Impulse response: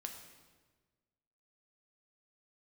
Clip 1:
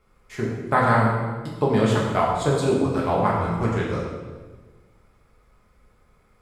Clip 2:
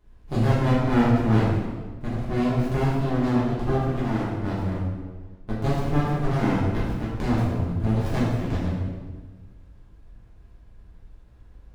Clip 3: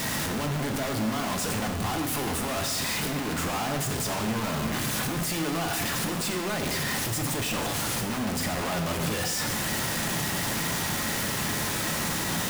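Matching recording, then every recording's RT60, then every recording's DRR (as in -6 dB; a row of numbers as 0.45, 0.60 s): 3; 1.4, 1.4, 1.4 s; -5.0, -9.5, 3.0 dB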